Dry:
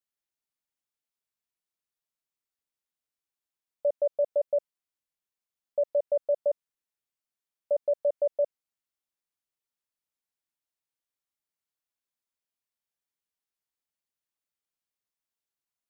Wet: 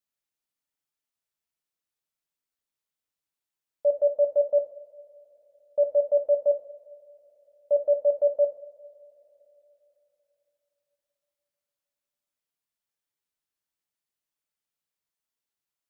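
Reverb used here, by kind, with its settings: two-slope reverb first 0.51 s, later 3.7 s, from -20 dB, DRR 5 dB

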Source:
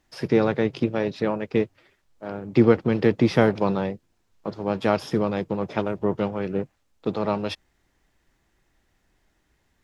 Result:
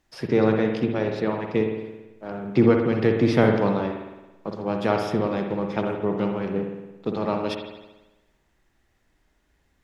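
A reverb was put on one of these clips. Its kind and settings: spring tank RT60 1.1 s, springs 55 ms, chirp 30 ms, DRR 3 dB; gain -1.5 dB

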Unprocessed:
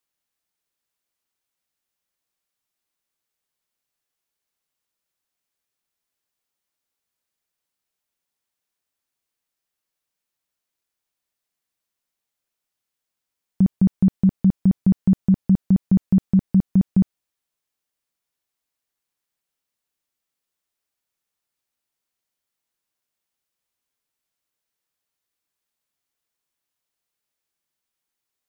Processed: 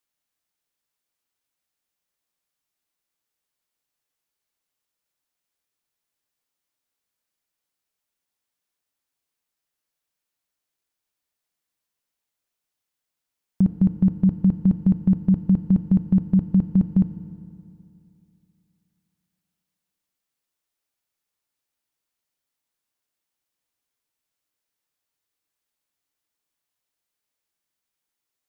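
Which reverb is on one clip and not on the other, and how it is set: FDN reverb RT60 2.7 s, high-frequency decay 0.75×, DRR 10 dB; gain -1 dB

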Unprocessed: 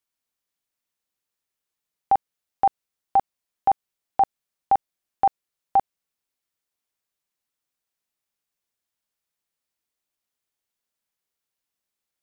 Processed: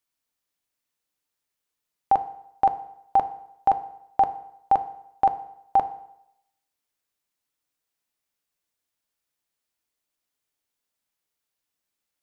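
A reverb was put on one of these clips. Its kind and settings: FDN reverb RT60 0.79 s, low-frequency decay 0.9×, high-frequency decay 0.9×, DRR 9.5 dB; gain +1 dB

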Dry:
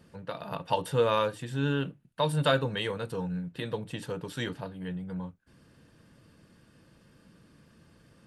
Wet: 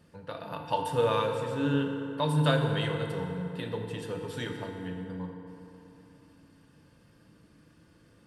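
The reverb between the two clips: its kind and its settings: FDN reverb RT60 3.2 s, high-frequency decay 0.55×, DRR 2.5 dB; gain -3 dB

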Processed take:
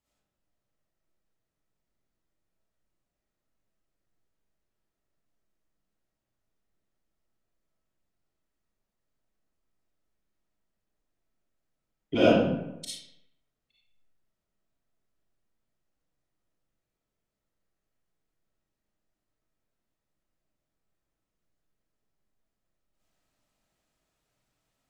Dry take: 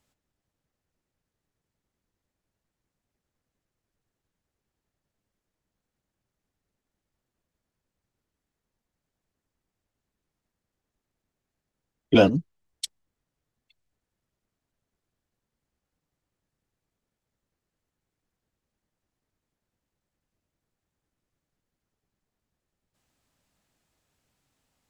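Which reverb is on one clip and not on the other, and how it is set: digital reverb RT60 0.89 s, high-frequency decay 0.65×, pre-delay 15 ms, DRR -9.5 dB; gain -12 dB

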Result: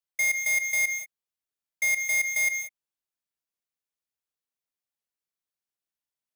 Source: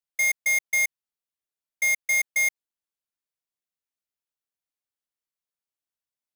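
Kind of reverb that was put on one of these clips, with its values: non-linear reverb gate 0.21 s rising, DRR 8 dB; gain -2 dB

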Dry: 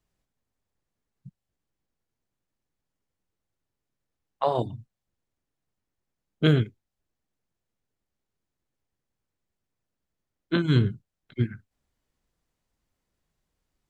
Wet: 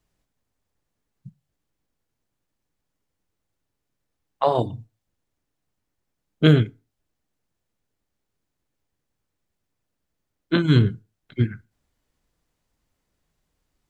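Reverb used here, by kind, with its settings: FDN reverb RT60 0.32 s, low-frequency decay 1×, high-frequency decay 0.75×, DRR 17.5 dB; gain +4.5 dB

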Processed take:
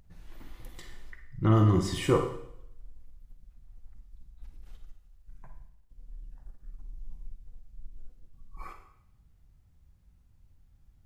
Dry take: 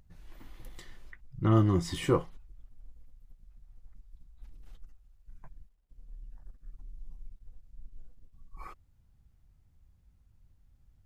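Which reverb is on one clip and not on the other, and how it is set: Schroeder reverb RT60 0.71 s, DRR 5.5 dB; gain +1.5 dB

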